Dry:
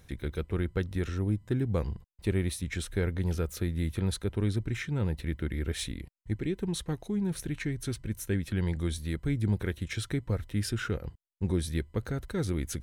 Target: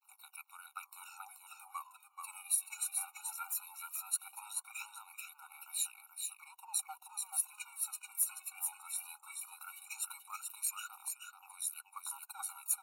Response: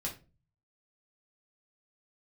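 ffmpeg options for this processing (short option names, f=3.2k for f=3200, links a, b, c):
-af "aexciter=amount=12.3:drive=5.9:freq=7.4k,agate=range=-33dB:threshold=-46dB:ratio=3:detection=peak,aeval=exprs='sgn(val(0))*max(abs(val(0))-0.00335,0)':c=same,aphaser=in_gain=1:out_gain=1:delay=2.8:decay=0.67:speed=0.18:type=triangular,highshelf=f=4.2k:g=-11,aecho=1:1:432:0.562,afftfilt=real='re*eq(mod(floor(b*sr/1024/740),2),1)':imag='im*eq(mod(floor(b*sr/1024/740),2),1)':win_size=1024:overlap=0.75,volume=-3dB"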